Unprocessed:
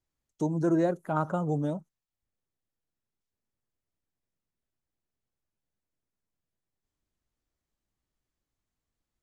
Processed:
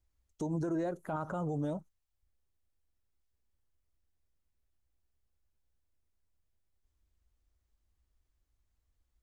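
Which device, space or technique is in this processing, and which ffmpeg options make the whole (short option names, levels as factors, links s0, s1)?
car stereo with a boomy subwoofer: -af "lowshelf=f=100:t=q:w=1.5:g=11.5,alimiter=level_in=1.41:limit=0.0631:level=0:latency=1:release=83,volume=0.708"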